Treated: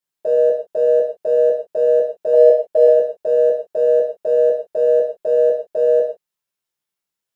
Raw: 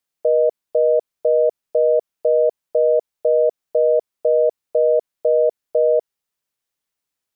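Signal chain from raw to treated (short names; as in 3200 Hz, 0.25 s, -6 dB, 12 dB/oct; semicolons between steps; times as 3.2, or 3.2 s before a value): 2.33–2.87 dynamic EQ 670 Hz, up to +7 dB, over -29 dBFS, Q 1.1; in parallel at -10 dB: crossover distortion -30 dBFS; on the sum: non-linear reverb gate 0.18 s falling, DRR -6.5 dB; gain -8.5 dB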